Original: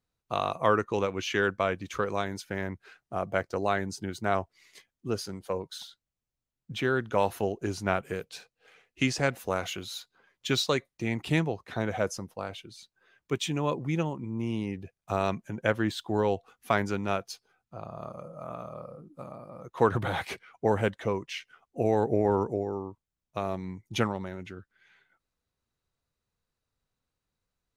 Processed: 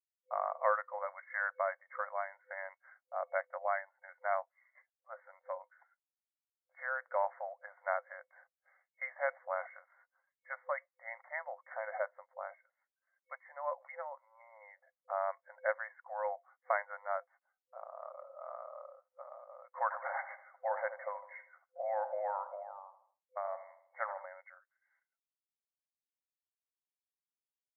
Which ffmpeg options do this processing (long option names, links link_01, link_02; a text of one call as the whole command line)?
ffmpeg -i in.wav -filter_complex "[0:a]asplit=3[link_01][link_02][link_03];[link_01]afade=type=out:start_time=19.9:duration=0.02[link_04];[link_02]asplit=2[link_05][link_06];[link_06]adelay=79,lowpass=frequency=1600:poles=1,volume=-10.5dB,asplit=2[link_07][link_08];[link_08]adelay=79,lowpass=frequency=1600:poles=1,volume=0.51,asplit=2[link_09][link_10];[link_10]adelay=79,lowpass=frequency=1600:poles=1,volume=0.51,asplit=2[link_11][link_12];[link_12]adelay=79,lowpass=frequency=1600:poles=1,volume=0.51,asplit=2[link_13][link_14];[link_14]adelay=79,lowpass=frequency=1600:poles=1,volume=0.51,asplit=2[link_15][link_16];[link_16]adelay=79,lowpass=frequency=1600:poles=1,volume=0.51[link_17];[link_05][link_07][link_09][link_11][link_13][link_15][link_17]amix=inputs=7:normalize=0,afade=type=in:start_time=19.9:duration=0.02,afade=type=out:start_time=24.25:duration=0.02[link_18];[link_03]afade=type=in:start_time=24.25:duration=0.02[link_19];[link_04][link_18][link_19]amix=inputs=3:normalize=0,agate=range=-33dB:threshold=-54dB:ratio=3:detection=peak,afftfilt=real='re*between(b*sr/4096,510,2200)':imag='im*between(b*sr/4096,510,2200)':win_size=4096:overlap=0.75,volume=-5.5dB" out.wav